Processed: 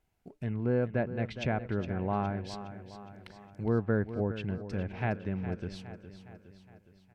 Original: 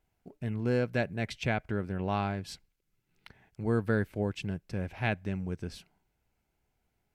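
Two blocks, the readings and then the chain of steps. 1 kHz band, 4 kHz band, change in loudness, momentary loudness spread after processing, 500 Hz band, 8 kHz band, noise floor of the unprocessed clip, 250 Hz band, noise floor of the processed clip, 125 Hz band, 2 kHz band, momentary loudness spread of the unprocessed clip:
-0.5 dB, -4.0 dB, -0.5 dB, 19 LU, +0.5 dB, n/a, -79 dBFS, +0.5 dB, -65 dBFS, +0.5 dB, -4.0 dB, 11 LU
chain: treble ducked by the level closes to 1400 Hz, closed at -27.5 dBFS; on a send: feedback echo 0.413 s, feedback 53%, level -12 dB

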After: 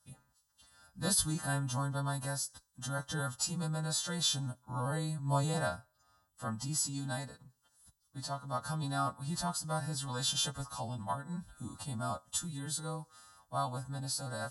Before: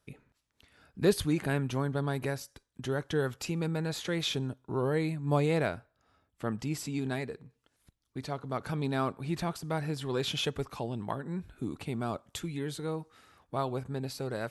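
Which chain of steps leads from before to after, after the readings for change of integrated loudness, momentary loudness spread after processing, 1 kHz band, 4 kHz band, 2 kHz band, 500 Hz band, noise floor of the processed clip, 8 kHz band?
-2.5 dB, 11 LU, 0.0 dB, +1.5 dB, -4.5 dB, -9.5 dB, -76 dBFS, +9.5 dB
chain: frequency quantiser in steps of 2 st; fixed phaser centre 950 Hz, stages 4

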